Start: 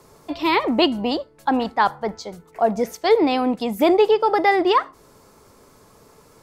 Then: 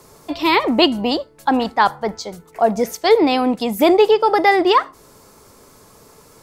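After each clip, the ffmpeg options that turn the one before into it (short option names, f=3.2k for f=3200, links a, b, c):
-af "highshelf=f=4.2k:g=5.5,volume=3dB"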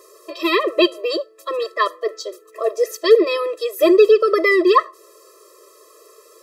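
-af "afftfilt=real='re*eq(mod(floor(b*sr/1024/340),2),1)':imag='im*eq(mod(floor(b*sr/1024/340),2),1)':win_size=1024:overlap=0.75,volume=2dB"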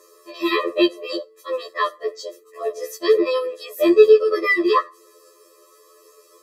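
-af "afftfilt=real='re*2*eq(mod(b,4),0)':imag='im*2*eq(mod(b,4),0)':win_size=2048:overlap=0.75,volume=-1.5dB"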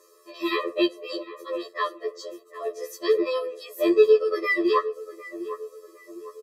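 -filter_complex "[0:a]asplit=2[a][b];[b]adelay=755,lowpass=f=1.4k:p=1,volume=-13dB,asplit=2[c][d];[d]adelay=755,lowpass=f=1.4k:p=1,volume=0.47,asplit=2[e][f];[f]adelay=755,lowpass=f=1.4k:p=1,volume=0.47,asplit=2[g][h];[h]adelay=755,lowpass=f=1.4k:p=1,volume=0.47,asplit=2[i][j];[j]adelay=755,lowpass=f=1.4k:p=1,volume=0.47[k];[a][c][e][g][i][k]amix=inputs=6:normalize=0,volume=-5.5dB"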